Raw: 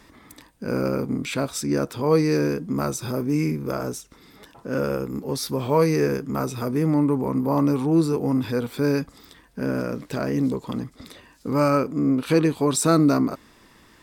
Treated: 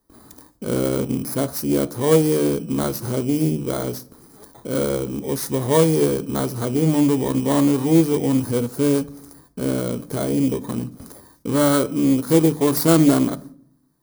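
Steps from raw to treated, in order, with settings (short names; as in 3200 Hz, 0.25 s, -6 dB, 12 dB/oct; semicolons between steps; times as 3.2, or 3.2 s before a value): FFT order left unsorted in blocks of 16 samples; bell 2700 Hz -11.5 dB 1 oct; gate with hold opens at -41 dBFS; notches 50/100/150/200/250/300 Hz; on a send at -17 dB: reverb RT60 0.65 s, pre-delay 3 ms; on the sum: Doppler distortion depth 0.24 ms; gain +4 dB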